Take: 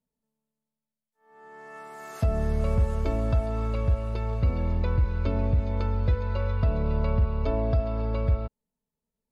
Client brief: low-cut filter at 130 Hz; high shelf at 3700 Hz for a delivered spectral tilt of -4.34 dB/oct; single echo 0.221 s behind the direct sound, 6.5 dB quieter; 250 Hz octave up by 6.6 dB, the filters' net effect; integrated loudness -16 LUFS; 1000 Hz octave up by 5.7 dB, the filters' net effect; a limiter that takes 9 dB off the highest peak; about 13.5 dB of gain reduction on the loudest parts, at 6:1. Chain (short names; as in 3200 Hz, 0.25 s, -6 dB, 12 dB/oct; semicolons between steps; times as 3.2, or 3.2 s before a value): HPF 130 Hz; bell 250 Hz +8.5 dB; bell 1000 Hz +6 dB; high shelf 3700 Hz +7.5 dB; compressor 6:1, threshold -36 dBFS; limiter -33 dBFS; echo 0.221 s -6.5 dB; gain +25.5 dB